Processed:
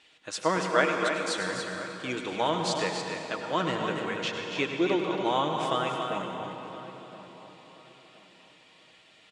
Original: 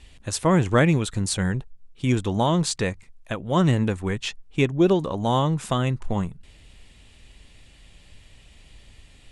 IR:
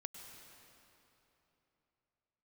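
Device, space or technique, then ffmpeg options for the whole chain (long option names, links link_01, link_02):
station announcement: -filter_complex "[0:a]asettb=1/sr,asplit=3[link_01][link_02][link_03];[link_01]atrim=end=0.584[link_04];[link_02]atrim=start=0.58:end=1.38,asetpts=PTS-STARTPTS,afade=type=in:duration=0.004:curve=qsin,afade=type=out:start_time=0.796:duration=0.004:curve=qsin,highpass=300[link_05];[link_03]atrim=start=1.376[link_06];[link_04][link_05]acrossfade=duration=0.004:curve1=hsin:curve2=qsin[link_07];[link_07][link_06]acrossfade=duration=0.004:curve1=qsin:curve2=hsin,highpass=370,lowpass=3900,equalizer=frequency=1400:width_type=o:width=0.24:gain=5,aecho=1:1:6.4:0.37,aecho=1:1:99.13|282.8:0.251|0.447[link_08];[1:a]atrim=start_sample=2205[link_09];[link_08][link_09]afir=irnorm=-1:irlink=0,highshelf=frequency=4200:gain=9.5,asplit=2[link_10][link_11];[link_11]adelay=1024,lowpass=frequency=1900:poles=1,volume=-15.5dB,asplit=2[link_12][link_13];[link_13]adelay=1024,lowpass=frequency=1900:poles=1,volume=0.32,asplit=2[link_14][link_15];[link_15]adelay=1024,lowpass=frequency=1900:poles=1,volume=0.32[link_16];[link_10][link_12][link_14][link_16]amix=inputs=4:normalize=0"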